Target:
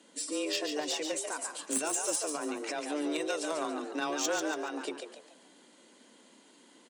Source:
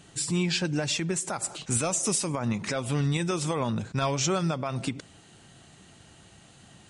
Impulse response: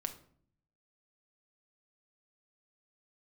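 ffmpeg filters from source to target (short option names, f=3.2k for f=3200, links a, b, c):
-filter_complex "[0:a]aecho=1:1:2.3:0.36,asplit=2[a][b];[b]acrusher=bits=2:mix=0:aa=0.5,volume=-3dB[c];[a][c]amix=inputs=2:normalize=0,asplit=5[d][e][f][g][h];[e]adelay=142,afreqshift=82,volume=-6dB[i];[f]adelay=284,afreqshift=164,volume=-14.9dB[j];[g]adelay=426,afreqshift=246,volume=-23.7dB[k];[h]adelay=568,afreqshift=328,volume=-32.6dB[l];[d][i][j][k][l]amix=inputs=5:normalize=0,afreqshift=150,volume=-7dB"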